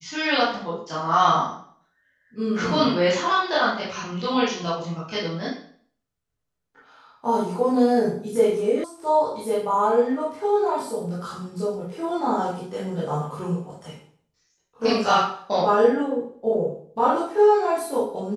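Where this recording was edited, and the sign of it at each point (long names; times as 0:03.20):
0:08.84: cut off before it has died away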